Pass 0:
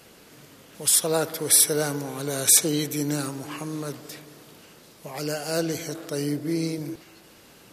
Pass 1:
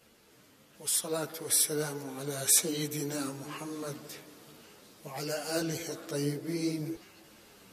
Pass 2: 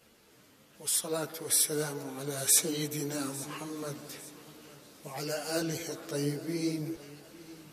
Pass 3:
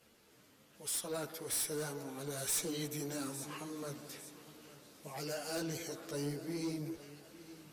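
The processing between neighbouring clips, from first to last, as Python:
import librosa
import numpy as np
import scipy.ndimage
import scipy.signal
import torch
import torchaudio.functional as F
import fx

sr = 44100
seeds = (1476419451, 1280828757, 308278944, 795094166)

y1 = fx.rider(x, sr, range_db=3, speed_s=2.0)
y1 = fx.ensemble(y1, sr)
y1 = y1 * 10.0 ** (-4.5 / 20.0)
y2 = fx.echo_feedback(y1, sr, ms=852, feedback_pct=40, wet_db=-18.5)
y3 = 10.0 ** (-19.0 / 20.0) * np.tanh(y2 / 10.0 ** (-19.0 / 20.0))
y3 = fx.cheby_harmonics(y3, sr, harmonics=(4, 5, 6, 8), levels_db=(-11, -17, -11, -22), full_scale_db=-19.0)
y3 = y3 * 10.0 ** (-9.0 / 20.0)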